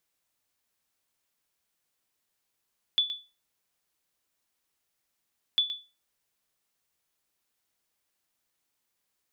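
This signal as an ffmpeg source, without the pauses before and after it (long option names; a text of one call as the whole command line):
ffmpeg -f lavfi -i "aevalsrc='0.15*(sin(2*PI*3460*mod(t,2.6))*exp(-6.91*mod(t,2.6)/0.29)+0.266*sin(2*PI*3460*max(mod(t,2.6)-0.12,0))*exp(-6.91*max(mod(t,2.6)-0.12,0)/0.29))':duration=5.2:sample_rate=44100" out.wav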